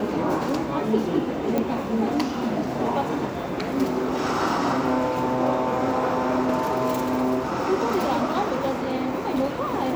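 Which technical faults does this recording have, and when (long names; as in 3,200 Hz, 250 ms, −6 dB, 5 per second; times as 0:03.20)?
0:01.58: click −12 dBFS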